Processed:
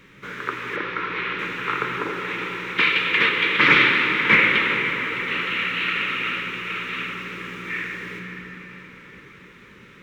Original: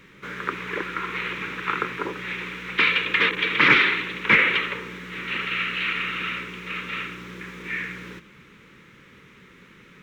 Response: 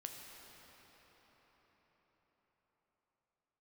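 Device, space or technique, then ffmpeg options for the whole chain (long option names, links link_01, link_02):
cathedral: -filter_complex "[1:a]atrim=start_sample=2205[link_01];[0:a][link_01]afir=irnorm=-1:irlink=0,asettb=1/sr,asplit=3[link_02][link_03][link_04];[link_02]atrim=end=0.764[link_05];[link_03]atrim=start=0.76:end=1.39,asetpts=PTS-STARTPTS,afade=type=in:duration=0.004:curve=qsin,afade=type=out:start_time=0.626:duration=0.004:curve=qsin,lowpass=frequency=5100:width=0.5412,lowpass=frequency=5100:width=1.3066[link_06];[link_04]atrim=start=1.386[link_07];[link_05][link_06]acrossfade=duration=0.004:curve1=hsin:curve2=qsin[link_08];[link_08][link_07]acrossfade=duration=0.004:curve1=qsin:curve2=hsin,volume=5.5dB"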